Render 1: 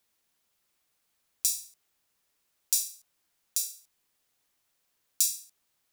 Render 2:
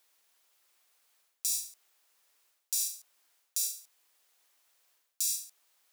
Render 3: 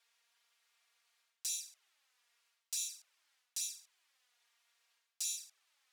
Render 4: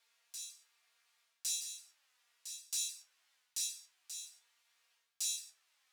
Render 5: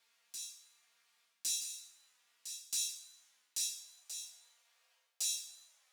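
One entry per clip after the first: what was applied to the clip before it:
high-pass 480 Hz 12 dB/octave; reverse; compression 10:1, threshold -33 dBFS, peak gain reduction 15 dB; reverse; trim +5.5 dB
band-pass filter 2.3 kHz, Q 0.61; touch-sensitive flanger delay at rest 4.4 ms, full sweep at -35 dBFS; trim +3 dB
feedback comb 74 Hz, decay 0.2 s, harmonics all, mix 90%; on a send: reverse echo 1109 ms -9 dB; on the sum: trim +7 dB
high-pass sweep 180 Hz -> 550 Hz, 3.25–3.86 s; Schroeder reverb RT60 0.94 s, combs from 33 ms, DRR 11.5 dB; trim +1 dB

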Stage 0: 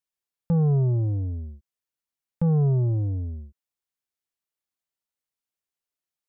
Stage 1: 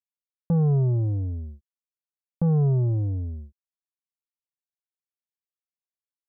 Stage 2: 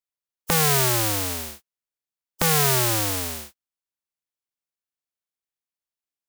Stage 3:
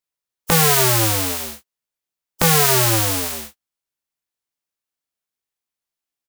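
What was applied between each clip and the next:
expander -38 dBFS
spectral contrast reduction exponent 0.21; trim +1.5 dB
doubling 18 ms -6 dB; trim +4 dB

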